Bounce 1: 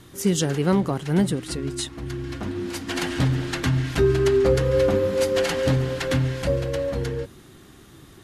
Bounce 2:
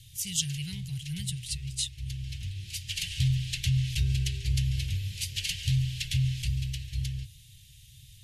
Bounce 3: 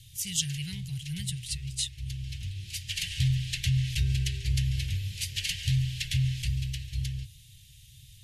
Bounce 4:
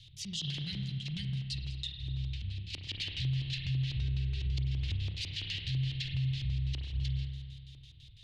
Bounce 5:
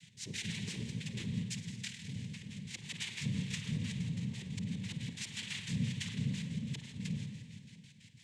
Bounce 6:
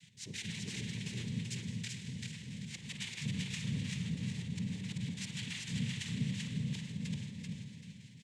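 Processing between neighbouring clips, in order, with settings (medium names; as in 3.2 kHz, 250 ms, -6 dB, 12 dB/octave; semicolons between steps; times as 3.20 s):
elliptic band-stop 120–2700 Hz, stop band 40 dB
dynamic bell 1.8 kHz, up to +5 dB, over -53 dBFS, Q 2.5
LFO low-pass square 6 Hz 300–4100 Hz; spring tank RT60 1.8 s, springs 30 ms, chirp 25 ms, DRR 5 dB; peak limiter -21.5 dBFS, peak gain reduction 11.5 dB; trim -4.5 dB
noise-vocoded speech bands 6; Schroeder reverb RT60 2.4 s, combs from 28 ms, DRR 13.5 dB; trim -3 dB
feedback delay 387 ms, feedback 31%, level -3 dB; trim -2 dB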